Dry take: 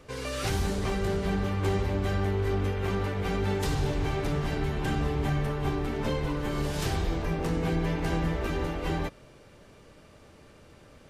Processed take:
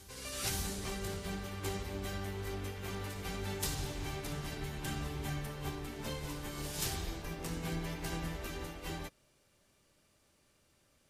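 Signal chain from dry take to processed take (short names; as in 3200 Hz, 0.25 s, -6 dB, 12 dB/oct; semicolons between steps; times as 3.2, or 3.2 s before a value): pre-emphasis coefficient 0.8; notch 460 Hz, Q 12; reverse echo 0.527 s -13 dB; upward expander 1.5:1, over -56 dBFS; gain +4 dB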